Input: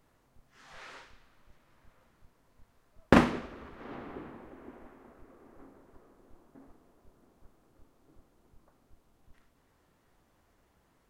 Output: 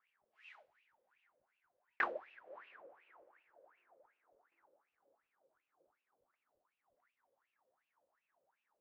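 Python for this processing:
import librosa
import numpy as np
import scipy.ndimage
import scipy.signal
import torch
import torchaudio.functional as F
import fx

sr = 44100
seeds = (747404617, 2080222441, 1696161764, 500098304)

y = fx.speed_glide(x, sr, from_pct=165, to_pct=87)
y = fx.wah_lfo(y, sr, hz=2.7, low_hz=520.0, high_hz=2700.0, q=12.0)
y = y * 10.0 ** (2.5 / 20.0)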